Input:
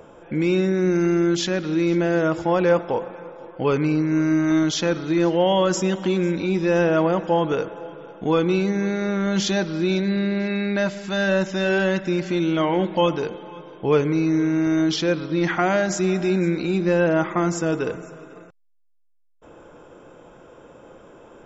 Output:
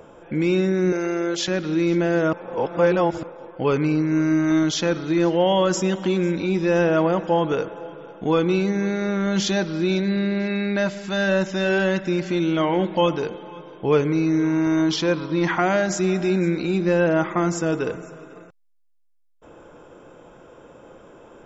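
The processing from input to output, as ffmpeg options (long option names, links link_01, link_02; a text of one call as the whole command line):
ffmpeg -i in.wav -filter_complex "[0:a]asettb=1/sr,asplit=3[link_01][link_02][link_03];[link_01]atrim=end=0.924[link_04];[link_02]atrim=start=0.92:end=1.48,asetpts=PTS-STARTPTS,afade=type=in:duration=0.004:curve=qsin,afade=type=out:start_time=0.556:duration=0.004:curve=qsin,lowshelf=frequency=350:width_type=q:width=3:gain=-9[link_05];[link_03]atrim=start=1.476[link_06];[link_04][link_05]acrossfade=duration=0.004:curve1=hsin:curve2=qsin[link_07];[link_07][link_06]acrossfade=duration=0.004:curve1=qsin:curve2=hsin,asettb=1/sr,asplit=3[link_08][link_09][link_10];[link_08]atrim=end=14.434[link_11];[link_09]atrim=start=14.43:end=15.59,asetpts=PTS-STARTPTS,afade=type=in:duration=0.004:curve=qsin,afade=type=out:start_time=1.156:duration=0.004:curve=qsin,equalizer=frequency=990:width_type=o:width=0.29:gain=10[link_12];[link_10]atrim=start=15.586[link_13];[link_11][link_12]acrossfade=duration=0.004:curve1=hsin:curve2=qsin[link_14];[link_14][link_13]acrossfade=duration=0.004:curve1=qsin:curve2=hsin,asplit=3[link_15][link_16][link_17];[link_15]atrim=end=2.332[link_18];[link_16]atrim=start=2.328:end=3.232,asetpts=PTS-STARTPTS,areverse[link_19];[link_17]atrim=start=3.228[link_20];[link_18][link_19]acrossfade=duration=0.004:curve1=hsin:curve2=hsin[link_21];[link_21][link_20]acrossfade=duration=0.004:curve1=hsin:curve2=hsin" out.wav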